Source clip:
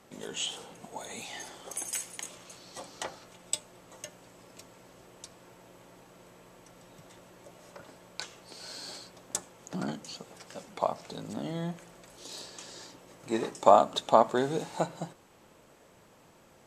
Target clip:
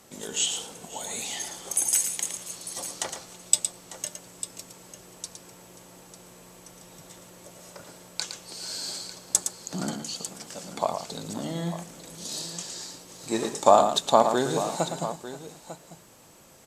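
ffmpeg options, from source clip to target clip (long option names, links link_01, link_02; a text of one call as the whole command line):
ffmpeg -i in.wav -af "bass=frequency=250:gain=1,treble=frequency=4000:gain=10,aecho=1:1:113|533|898:0.398|0.119|0.211,volume=2dB" out.wav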